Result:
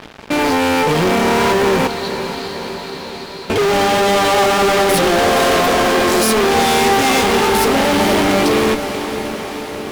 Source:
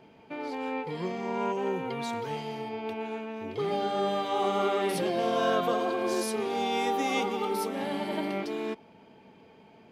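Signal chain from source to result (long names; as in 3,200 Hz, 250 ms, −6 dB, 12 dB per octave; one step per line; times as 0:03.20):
fuzz pedal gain 44 dB, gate −52 dBFS
0:01.87–0:03.50: resonant band-pass 4,200 Hz, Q 8.3
feedback delay with all-pass diffusion 479 ms, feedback 69%, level −10 dB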